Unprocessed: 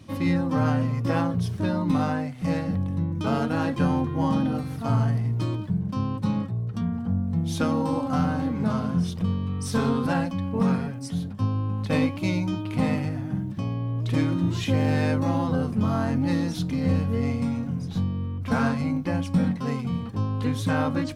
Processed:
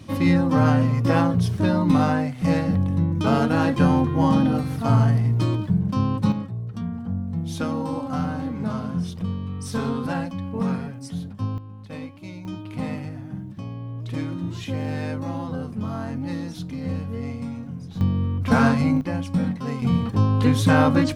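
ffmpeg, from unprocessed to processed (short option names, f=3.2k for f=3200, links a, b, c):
-af "asetnsamples=n=441:p=0,asendcmd='6.32 volume volume -2dB;11.58 volume volume -12.5dB;12.45 volume volume -5dB;18.01 volume volume 6dB;19.01 volume volume -0.5dB;19.82 volume volume 7.5dB',volume=5dB"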